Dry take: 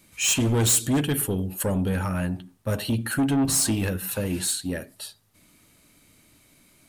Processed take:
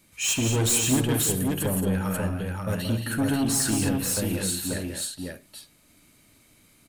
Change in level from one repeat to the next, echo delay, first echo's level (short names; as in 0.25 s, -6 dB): no steady repeat, 69 ms, -13.5 dB